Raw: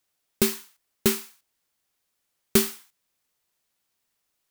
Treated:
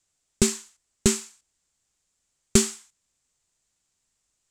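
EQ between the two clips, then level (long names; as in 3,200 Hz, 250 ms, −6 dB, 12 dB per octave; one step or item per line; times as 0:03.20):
low-pass with resonance 7,500 Hz, resonance Q 4.1
low-shelf EQ 83 Hz +5.5 dB
low-shelf EQ 170 Hz +9.5 dB
−2.0 dB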